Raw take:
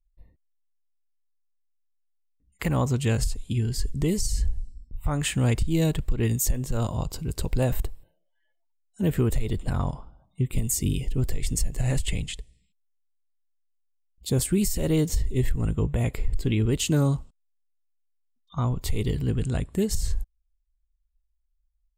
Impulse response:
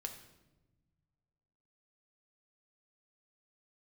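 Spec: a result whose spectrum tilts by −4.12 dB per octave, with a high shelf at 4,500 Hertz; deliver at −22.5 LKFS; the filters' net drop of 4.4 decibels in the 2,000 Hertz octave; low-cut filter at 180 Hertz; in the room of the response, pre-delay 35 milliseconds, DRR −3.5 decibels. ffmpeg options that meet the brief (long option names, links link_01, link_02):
-filter_complex "[0:a]highpass=180,equalizer=frequency=2000:width_type=o:gain=-7.5,highshelf=frequency=4500:gain=6.5,asplit=2[link_01][link_02];[1:a]atrim=start_sample=2205,adelay=35[link_03];[link_02][link_03]afir=irnorm=-1:irlink=0,volume=5.5dB[link_04];[link_01][link_04]amix=inputs=2:normalize=0,volume=1dB"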